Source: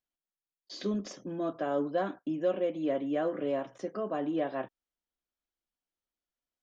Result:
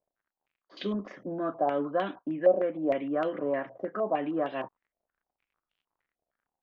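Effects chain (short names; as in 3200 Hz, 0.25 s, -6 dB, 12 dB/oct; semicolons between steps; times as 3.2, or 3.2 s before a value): crackle 70/s -62 dBFS; stepped low-pass 6.5 Hz 660–3000 Hz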